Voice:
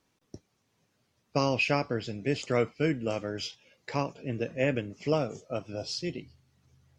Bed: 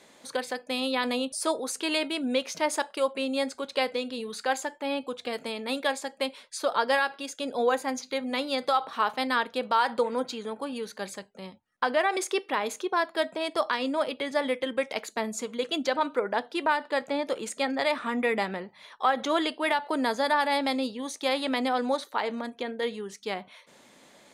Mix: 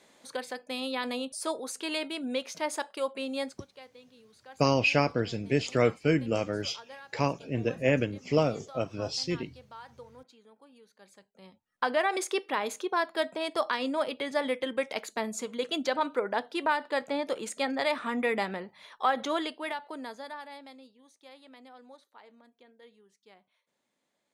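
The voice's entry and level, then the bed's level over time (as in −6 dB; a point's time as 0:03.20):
3.25 s, +2.5 dB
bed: 0:03.45 −5 dB
0:03.71 −23 dB
0:10.95 −23 dB
0:11.81 −2 dB
0:19.17 −2 dB
0:20.94 −25 dB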